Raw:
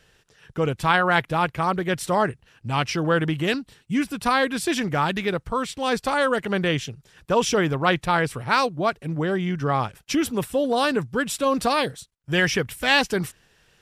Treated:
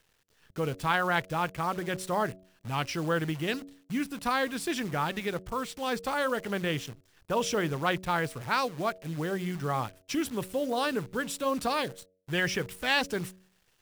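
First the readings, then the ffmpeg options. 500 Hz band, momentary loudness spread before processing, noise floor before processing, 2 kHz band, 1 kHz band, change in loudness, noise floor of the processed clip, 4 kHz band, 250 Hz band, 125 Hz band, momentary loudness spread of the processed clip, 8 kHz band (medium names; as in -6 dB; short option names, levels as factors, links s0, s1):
-8.0 dB, 7 LU, -63 dBFS, -7.5 dB, -7.5 dB, -7.5 dB, -69 dBFS, -7.5 dB, -8.0 dB, -7.5 dB, 7 LU, -7.0 dB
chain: -af "acrusher=bits=7:dc=4:mix=0:aa=0.000001,bandreject=f=93.15:t=h:w=4,bandreject=f=186.3:t=h:w=4,bandreject=f=279.45:t=h:w=4,bandreject=f=372.6:t=h:w=4,bandreject=f=465.75:t=h:w=4,bandreject=f=558.9:t=h:w=4,bandreject=f=652.05:t=h:w=4,volume=0.422"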